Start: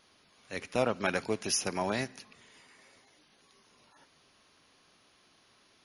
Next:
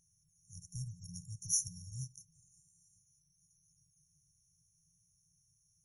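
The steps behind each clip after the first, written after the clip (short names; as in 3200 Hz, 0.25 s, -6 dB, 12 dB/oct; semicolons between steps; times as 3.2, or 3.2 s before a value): FFT band-reject 180–5500 Hz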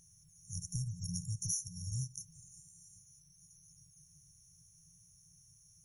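compressor 8:1, threshold -45 dBFS, peak gain reduction 17.5 dB; gain +10.5 dB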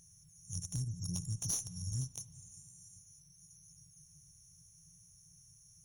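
one diode to ground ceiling -32 dBFS; spring tank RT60 3.4 s, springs 33/54 ms, chirp 35 ms, DRR 17 dB; gain +2 dB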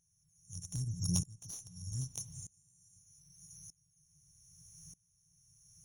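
dB-ramp tremolo swelling 0.81 Hz, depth 25 dB; gain +8.5 dB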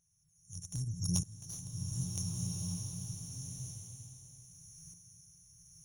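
bloom reverb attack 1.54 s, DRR 0.5 dB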